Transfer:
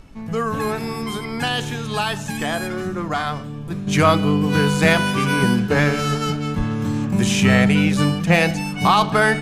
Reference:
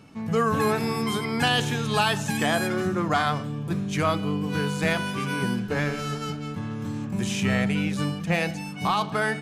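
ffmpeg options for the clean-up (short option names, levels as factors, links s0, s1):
-filter_complex "[0:a]asplit=3[s0][s1][s2];[s0]afade=t=out:st=6.57:d=0.02[s3];[s1]highpass=f=140:w=0.5412,highpass=f=140:w=1.3066,afade=t=in:st=6.57:d=0.02,afade=t=out:st=6.69:d=0.02[s4];[s2]afade=t=in:st=6.69:d=0.02[s5];[s3][s4][s5]amix=inputs=3:normalize=0,agate=range=0.0891:threshold=0.1,asetnsamples=n=441:p=0,asendcmd='3.87 volume volume -9dB',volume=1"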